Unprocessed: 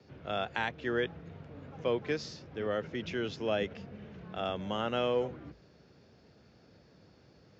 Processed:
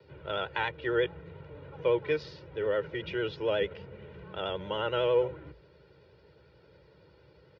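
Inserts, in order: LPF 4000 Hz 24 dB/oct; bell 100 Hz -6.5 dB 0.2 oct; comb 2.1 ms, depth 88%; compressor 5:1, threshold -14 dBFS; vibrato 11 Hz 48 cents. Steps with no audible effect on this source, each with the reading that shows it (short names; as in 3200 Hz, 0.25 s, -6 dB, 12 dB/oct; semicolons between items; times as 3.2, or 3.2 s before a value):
compressor, threshold -14 dBFS: input peak -16.0 dBFS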